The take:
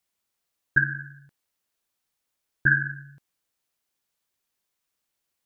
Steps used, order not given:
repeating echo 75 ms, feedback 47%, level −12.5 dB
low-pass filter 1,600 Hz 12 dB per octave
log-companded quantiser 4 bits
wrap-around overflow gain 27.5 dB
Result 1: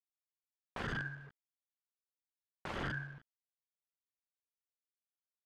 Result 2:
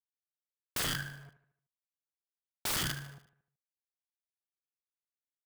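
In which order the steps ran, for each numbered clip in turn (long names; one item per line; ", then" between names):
repeating echo, then wrap-around overflow, then log-companded quantiser, then low-pass filter
log-companded quantiser, then low-pass filter, then wrap-around overflow, then repeating echo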